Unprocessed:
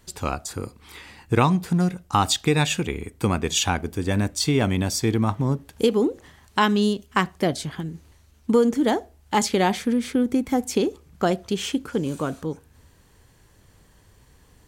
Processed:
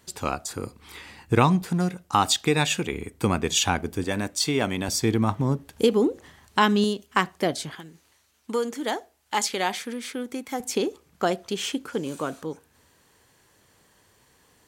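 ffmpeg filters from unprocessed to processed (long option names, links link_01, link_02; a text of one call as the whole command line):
ffmpeg -i in.wav -af "asetnsamples=nb_out_samples=441:pad=0,asendcmd='0.63 highpass f 57;1.62 highpass f 210;2.93 highpass f 95;4.04 highpass f 340;4.88 highpass f 88;6.84 highpass f 290;7.75 highpass f 1000;10.6 highpass f 380',highpass=frequency=150:poles=1" out.wav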